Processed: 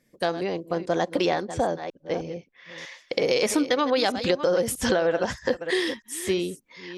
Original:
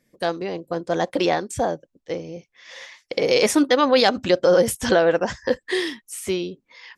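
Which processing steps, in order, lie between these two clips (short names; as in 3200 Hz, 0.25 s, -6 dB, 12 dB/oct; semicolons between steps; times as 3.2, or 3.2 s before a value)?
reverse delay 0.317 s, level -13.5 dB; 1.45–2.78 low-pass opened by the level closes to 2400 Hz, open at -20.5 dBFS; compressor, threshold -19 dBFS, peak gain reduction 7.5 dB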